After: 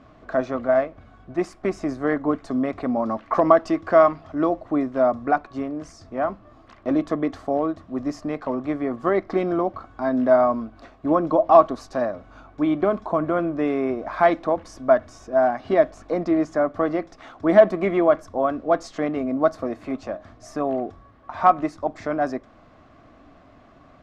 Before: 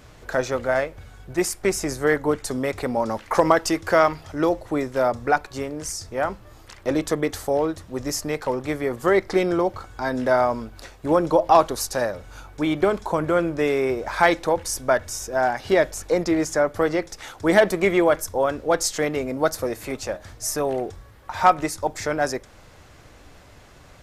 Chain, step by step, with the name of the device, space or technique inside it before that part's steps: inside a cardboard box (LPF 3700 Hz 12 dB/oct; small resonant body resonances 260/660/1100 Hz, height 14 dB, ringing for 25 ms); gain -8.5 dB

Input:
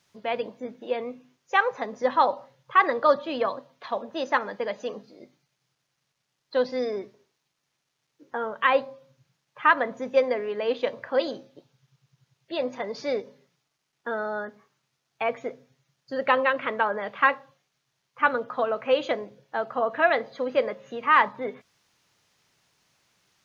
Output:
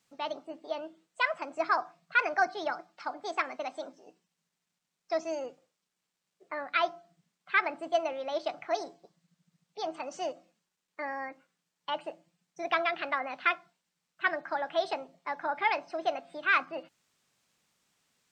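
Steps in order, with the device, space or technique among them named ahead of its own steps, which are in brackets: nightcore (varispeed +28%); gain -6.5 dB

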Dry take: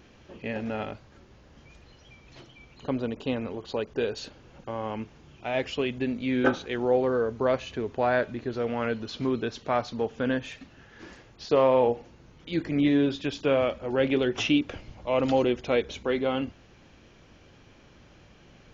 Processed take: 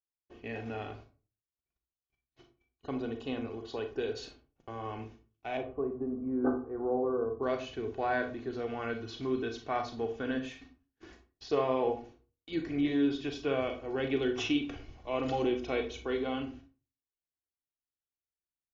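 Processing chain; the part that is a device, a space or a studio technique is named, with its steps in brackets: gate -46 dBFS, range -49 dB; 5.57–7.43 elliptic low-pass 1200 Hz, stop band 80 dB; microphone above a desk (comb 2.7 ms, depth 52%; reverb RT60 0.35 s, pre-delay 32 ms, DRR 6 dB); gain -8 dB

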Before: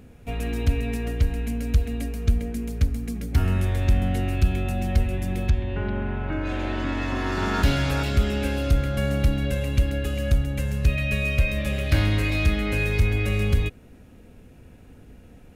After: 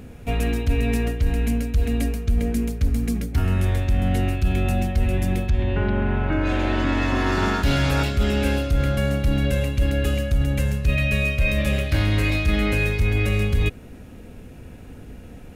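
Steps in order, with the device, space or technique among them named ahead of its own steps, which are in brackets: compression on the reversed sound (reverse; compressor, threshold -24 dBFS, peak gain reduction 10.5 dB; reverse); gain +7.5 dB

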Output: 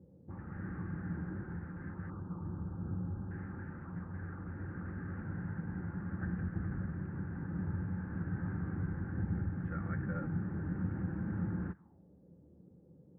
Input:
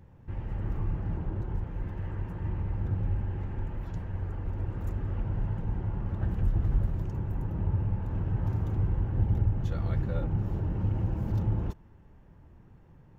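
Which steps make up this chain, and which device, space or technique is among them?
2.1–3.31 steep low-pass 1300 Hz 48 dB/oct; envelope filter bass rig (envelope low-pass 460–1600 Hz up, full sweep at -29 dBFS; speaker cabinet 78–2200 Hz, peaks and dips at 110 Hz -9 dB, 180 Hz +8 dB, 290 Hz +4 dB, 430 Hz -4 dB, 640 Hz -8 dB, 960 Hz -8 dB); gain -5.5 dB

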